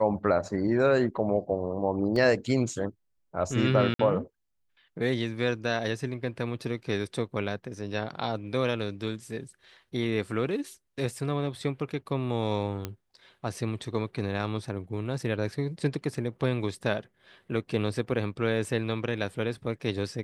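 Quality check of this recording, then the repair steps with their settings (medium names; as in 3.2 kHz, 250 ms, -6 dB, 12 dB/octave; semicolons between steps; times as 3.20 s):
2.16 s: dropout 3 ms
3.94–3.99 s: dropout 53 ms
12.85 s: pop -17 dBFS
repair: de-click; interpolate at 2.16 s, 3 ms; interpolate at 3.94 s, 53 ms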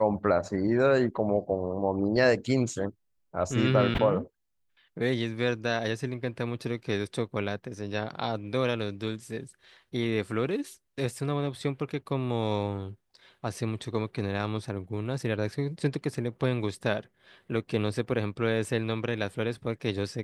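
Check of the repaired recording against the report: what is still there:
nothing left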